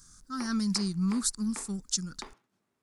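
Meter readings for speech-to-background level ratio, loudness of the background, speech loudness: 18.5 dB, -49.5 LUFS, -31.0 LUFS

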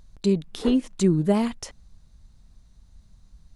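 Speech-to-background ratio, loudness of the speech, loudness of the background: 13.0 dB, -23.5 LUFS, -36.5 LUFS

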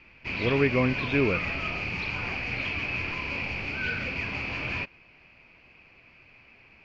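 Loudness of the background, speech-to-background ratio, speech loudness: -30.0 LUFS, 3.0 dB, -27.0 LUFS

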